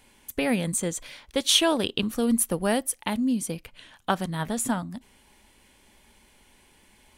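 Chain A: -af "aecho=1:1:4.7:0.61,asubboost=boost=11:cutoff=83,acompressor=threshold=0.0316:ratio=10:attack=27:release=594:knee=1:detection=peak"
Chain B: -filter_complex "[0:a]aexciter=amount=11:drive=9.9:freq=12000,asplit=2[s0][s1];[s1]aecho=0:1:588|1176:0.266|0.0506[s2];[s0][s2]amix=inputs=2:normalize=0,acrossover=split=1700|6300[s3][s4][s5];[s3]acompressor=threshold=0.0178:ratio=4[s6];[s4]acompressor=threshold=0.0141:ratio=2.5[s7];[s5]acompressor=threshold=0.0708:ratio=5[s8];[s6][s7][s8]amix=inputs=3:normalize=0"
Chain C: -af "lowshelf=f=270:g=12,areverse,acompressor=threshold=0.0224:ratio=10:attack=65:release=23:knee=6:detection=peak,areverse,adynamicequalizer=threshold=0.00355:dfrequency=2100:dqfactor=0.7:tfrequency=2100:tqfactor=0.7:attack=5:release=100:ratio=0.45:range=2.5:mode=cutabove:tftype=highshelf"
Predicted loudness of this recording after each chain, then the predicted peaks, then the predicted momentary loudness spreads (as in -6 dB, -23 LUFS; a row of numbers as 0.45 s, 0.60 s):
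-34.5 LUFS, -27.5 LUFS, -30.5 LUFS; -14.5 dBFS, -8.5 dBFS, -12.0 dBFS; 19 LU, 21 LU, 8 LU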